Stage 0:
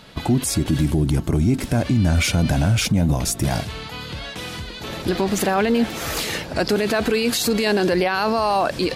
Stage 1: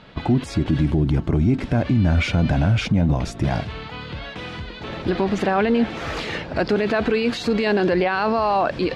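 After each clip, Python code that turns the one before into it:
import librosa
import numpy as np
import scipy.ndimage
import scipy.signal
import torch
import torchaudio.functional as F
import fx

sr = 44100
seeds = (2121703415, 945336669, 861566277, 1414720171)

y = scipy.signal.sosfilt(scipy.signal.butter(2, 3000.0, 'lowpass', fs=sr, output='sos'), x)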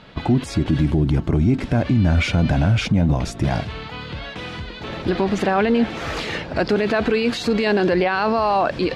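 y = fx.high_shelf(x, sr, hz=6700.0, db=4.5)
y = y * 10.0 ** (1.0 / 20.0)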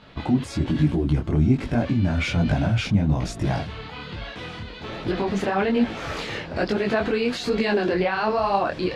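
y = fx.detune_double(x, sr, cents=41)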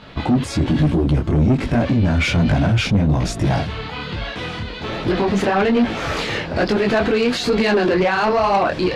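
y = 10.0 ** (-18.5 / 20.0) * np.tanh(x / 10.0 ** (-18.5 / 20.0))
y = y * 10.0 ** (8.0 / 20.0)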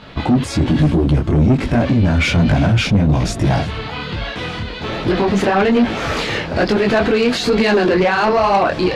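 y = x + 10.0 ** (-21.0 / 20.0) * np.pad(x, (int(352 * sr / 1000.0), 0))[:len(x)]
y = y * 10.0 ** (2.5 / 20.0)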